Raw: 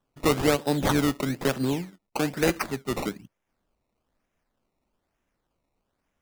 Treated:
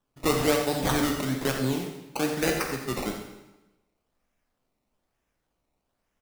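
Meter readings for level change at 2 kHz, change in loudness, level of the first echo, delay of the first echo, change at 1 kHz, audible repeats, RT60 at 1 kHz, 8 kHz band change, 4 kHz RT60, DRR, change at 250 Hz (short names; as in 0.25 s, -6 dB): 0.0 dB, -1.0 dB, -10.5 dB, 87 ms, -0.5 dB, 1, 1.0 s, +2.0 dB, 0.95 s, 1.5 dB, -2.0 dB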